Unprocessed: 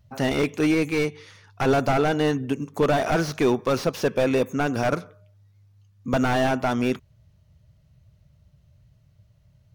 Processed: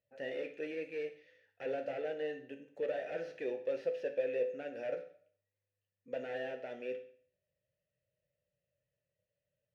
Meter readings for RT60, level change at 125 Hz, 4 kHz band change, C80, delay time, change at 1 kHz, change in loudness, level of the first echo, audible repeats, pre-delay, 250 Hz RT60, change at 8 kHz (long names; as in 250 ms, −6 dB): 0.55 s, −33.5 dB, −22.0 dB, 15.0 dB, no echo audible, −24.0 dB, −16.0 dB, no echo audible, no echo audible, 9 ms, 0.50 s, below −30 dB